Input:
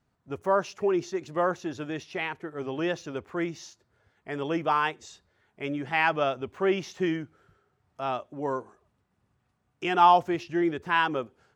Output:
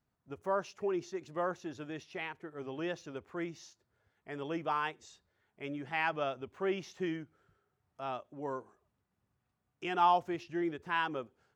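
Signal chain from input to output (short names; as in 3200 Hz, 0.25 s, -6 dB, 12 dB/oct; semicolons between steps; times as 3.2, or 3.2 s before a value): ending taper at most 480 dB/s; gain -8.5 dB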